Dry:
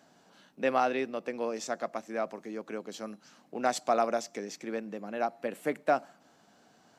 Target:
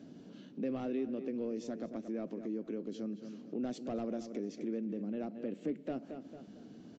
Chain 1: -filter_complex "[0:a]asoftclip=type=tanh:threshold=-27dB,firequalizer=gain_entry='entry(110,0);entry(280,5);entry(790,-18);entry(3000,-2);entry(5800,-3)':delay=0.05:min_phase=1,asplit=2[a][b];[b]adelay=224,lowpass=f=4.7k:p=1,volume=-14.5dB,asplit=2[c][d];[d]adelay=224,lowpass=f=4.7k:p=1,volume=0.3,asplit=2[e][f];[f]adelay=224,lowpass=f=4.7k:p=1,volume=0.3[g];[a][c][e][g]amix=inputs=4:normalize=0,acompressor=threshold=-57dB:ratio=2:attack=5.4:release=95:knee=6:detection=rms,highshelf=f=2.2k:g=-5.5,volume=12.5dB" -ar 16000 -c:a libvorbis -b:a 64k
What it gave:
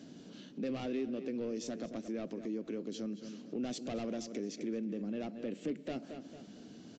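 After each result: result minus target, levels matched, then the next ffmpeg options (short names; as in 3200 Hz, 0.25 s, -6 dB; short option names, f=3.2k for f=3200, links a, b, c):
4000 Hz band +8.5 dB; soft clip: distortion +6 dB
-filter_complex "[0:a]asoftclip=type=tanh:threshold=-27dB,firequalizer=gain_entry='entry(110,0);entry(280,5);entry(790,-18);entry(3000,-2);entry(5800,-3)':delay=0.05:min_phase=1,asplit=2[a][b];[b]adelay=224,lowpass=f=4.7k:p=1,volume=-14.5dB,asplit=2[c][d];[d]adelay=224,lowpass=f=4.7k:p=1,volume=0.3,asplit=2[e][f];[f]adelay=224,lowpass=f=4.7k:p=1,volume=0.3[g];[a][c][e][g]amix=inputs=4:normalize=0,acompressor=threshold=-57dB:ratio=2:attack=5.4:release=95:knee=6:detection=rms,highshelf=f=2.2k:g=-16,volume=12.5dB" -ar 16000 -c:a libvorbis -b:a 64k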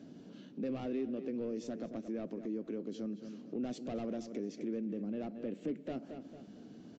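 soft clip: distortion +6 dB
-filter_complex "[0:a]asoftclip=type=tanh:threshold=-20.5dB,firequalizer=gain_entry='entry(110,0);entry(280,5);entry(790,-18);entry(3000,-2);entry(5800,-3)':delay=0.05:min_phase=1,asplit=2[a][b];[b]adelay=224,lowpass=f=4.7k:p=1,volume=-14.5dB,asplit=2[c][d];[d]adelay=224,lowpass=f=4.7k:p=1,volume=0.3,asplit=2[e][f];[f]adelay=224,lowpass=f=4.7k:p=1,volume=0.3[g];[a][c][e][g]amix=inputs=4:normalize=0,acompressor=threshold=-57dB:ratio=2:attack=5.4:release=95:knee=6:detection=rms,highshelf=f=2.2k:g=-16,volume=12.5dB" -ar 16000 -c:a libvorbis -b:a 64k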